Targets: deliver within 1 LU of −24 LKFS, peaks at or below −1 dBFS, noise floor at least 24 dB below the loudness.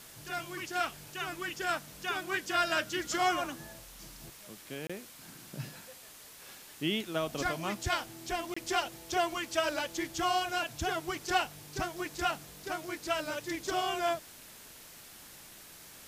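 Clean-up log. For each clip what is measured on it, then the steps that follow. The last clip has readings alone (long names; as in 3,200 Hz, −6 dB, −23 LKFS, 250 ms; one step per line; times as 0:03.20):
number of dropouts 2; longest dropout 25 ms; background noise floor −52 dBFS; target noise floor −58 dBFS; integrated loudness −34.0 LKFS; sample peak −17.5 dBFS; target loudness −24.0 LKFS
→ repair the gap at 0:04.87/0:08.54, 25 ms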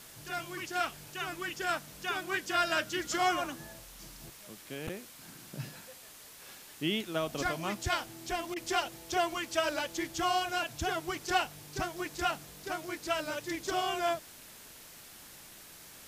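number of dropouts 0; background noise floor −52 dBFS; target noise floor −58 dBFS
→ broadband denoise 6 dB, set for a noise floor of −52 dBFS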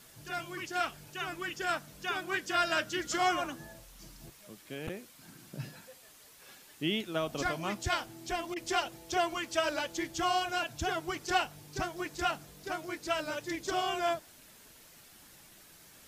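background noise floor −57 dBFS; target noise floor −58 dBFS
→ broadband denoise 6 dB, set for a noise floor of −57 dBFS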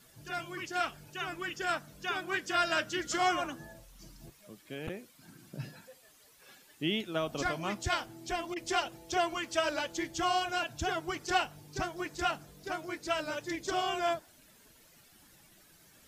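background noise floor −61 dBFS; integrated loudness −34.0 LKFS; sample peak −17.5 dBFS; target loudness −24.0 LKFS
→ level +10 dB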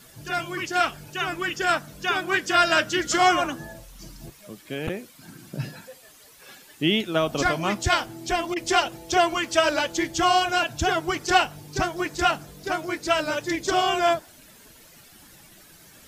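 integrated loudness −24.0 LKFS; sample peak −7.5 dBFS; background noise floor −51 dBFS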